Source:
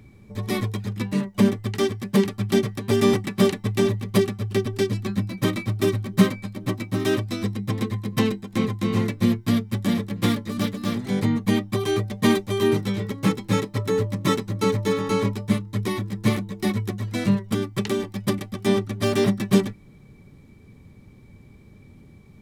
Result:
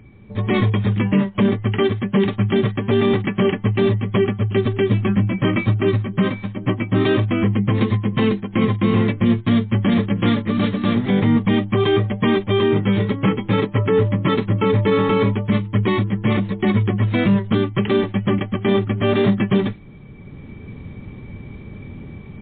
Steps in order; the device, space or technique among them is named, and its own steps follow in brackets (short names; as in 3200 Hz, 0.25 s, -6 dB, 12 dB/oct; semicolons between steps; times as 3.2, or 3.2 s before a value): low-bitrate web radio (AGC gain up to 10.5 dB; limiter -11 dBFS, peak gain reduction 9.5 dB; gain +3.5 dB; MP3 24 kbps 8000 Hz)